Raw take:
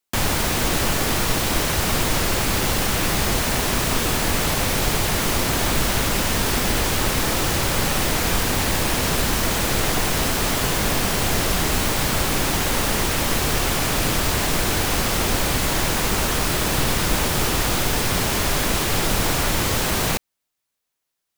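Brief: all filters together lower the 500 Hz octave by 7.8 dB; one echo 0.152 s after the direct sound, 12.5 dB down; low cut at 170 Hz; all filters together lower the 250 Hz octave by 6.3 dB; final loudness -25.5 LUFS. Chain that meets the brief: HPF 170 Hz; bell 250 Hz -4 dB; bell 500 Hz -9 dB; echo 0.152 s -12.5 dB; gain -4 dB

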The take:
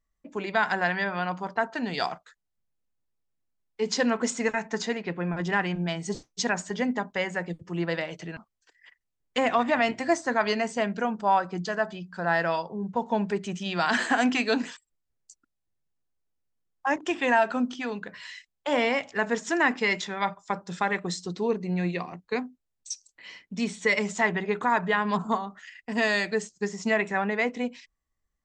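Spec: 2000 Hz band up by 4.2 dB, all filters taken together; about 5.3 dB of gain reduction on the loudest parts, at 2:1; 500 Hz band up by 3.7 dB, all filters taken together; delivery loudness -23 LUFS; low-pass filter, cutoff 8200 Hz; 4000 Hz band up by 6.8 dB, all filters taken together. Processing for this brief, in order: LPF 8200 Hz; bell 500 Hz +4.5 dB; bell 2000 Hz +3 dB; bell 4000 Hz +8 dB; compressor 2:1, threshold -24 dBFS; gain +4.5 dB

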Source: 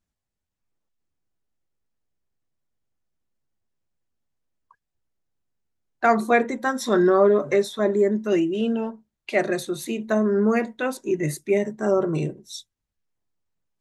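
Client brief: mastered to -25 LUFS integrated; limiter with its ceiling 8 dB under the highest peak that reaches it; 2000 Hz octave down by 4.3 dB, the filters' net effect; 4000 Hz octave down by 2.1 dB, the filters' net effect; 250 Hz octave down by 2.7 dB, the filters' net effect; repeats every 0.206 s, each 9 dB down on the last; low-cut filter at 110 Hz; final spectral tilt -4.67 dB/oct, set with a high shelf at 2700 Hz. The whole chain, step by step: HPF 110 Hz; bell 250 Hz -3.5 dB; bell 2000 Hz -6.5 dB; high shelf 2700 Hz +5 dB; bell 4000 Hz -5 dB; limiter -14.5 dBFS; feedback echo 0.206 s, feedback 35%, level -9 dB; gain +0.5 dB

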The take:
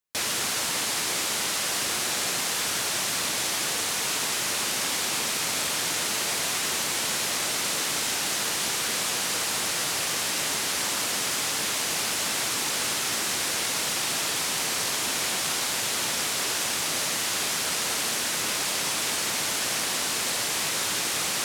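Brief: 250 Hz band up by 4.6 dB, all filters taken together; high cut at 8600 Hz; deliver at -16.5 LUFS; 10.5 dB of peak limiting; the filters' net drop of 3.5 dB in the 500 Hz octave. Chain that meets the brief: LPF 8600 Hz; bell 250 Hz +8 dB; bell 500 Hz -7 dB; gain +16 dB; limiter -9.5 dBFS

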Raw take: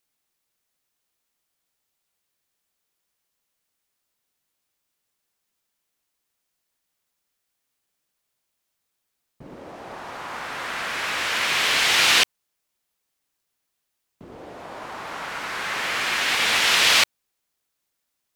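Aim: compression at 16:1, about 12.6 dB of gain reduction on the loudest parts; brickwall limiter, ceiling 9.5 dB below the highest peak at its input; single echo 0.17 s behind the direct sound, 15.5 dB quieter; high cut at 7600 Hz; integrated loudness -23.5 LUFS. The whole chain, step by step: LPF 7600 Hz; compressor 16:1, threshold -26 dBFS; limiter -26.5 dBFS; echo 0.17 s -15.5 dB; gain +11.5 dB

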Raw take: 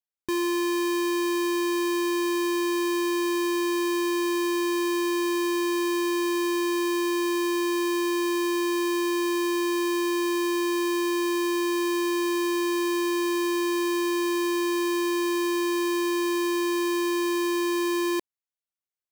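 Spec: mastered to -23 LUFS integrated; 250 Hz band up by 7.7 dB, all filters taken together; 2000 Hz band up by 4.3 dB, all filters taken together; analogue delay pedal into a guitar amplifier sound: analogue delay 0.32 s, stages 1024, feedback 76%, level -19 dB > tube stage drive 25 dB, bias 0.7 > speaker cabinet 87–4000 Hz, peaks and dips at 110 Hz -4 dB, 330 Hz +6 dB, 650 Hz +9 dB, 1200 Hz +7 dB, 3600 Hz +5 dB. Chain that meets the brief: bell 250 Hz +4 dB; bell 2000 Hz +4 dB; analogue delay 0.32 s, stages 1024, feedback 76%, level -19 dB; tube stage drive 25 dB, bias 0.7; speaker cabinet 87–4000 Hz, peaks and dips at 110 Hz -4 dB, 330 Hz +6 dB, 650 Hz +9 dB, 1200 Hz +7 dB, 3600 Hz +5 dB; gain +1 dB

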